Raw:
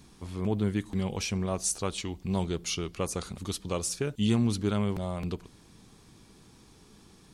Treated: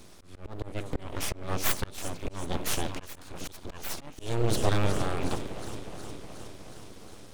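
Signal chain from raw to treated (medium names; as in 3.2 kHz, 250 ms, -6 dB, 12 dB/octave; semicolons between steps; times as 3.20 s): echo whose repeats swap between lows and highs 182 ms, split 1.8 kHz, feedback 84%, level -11 dB; slow attack 354 ms; full-wave rectifier; trim +5.5 dB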